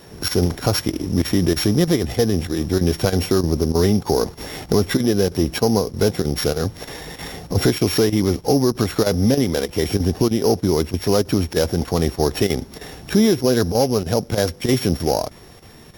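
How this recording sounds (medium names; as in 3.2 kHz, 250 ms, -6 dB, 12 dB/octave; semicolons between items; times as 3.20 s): a buzz of ramps at a fixed pitch in blocks of 8 samples; chopped level 3.2 Hz, depth 65%, duty 90%; MP3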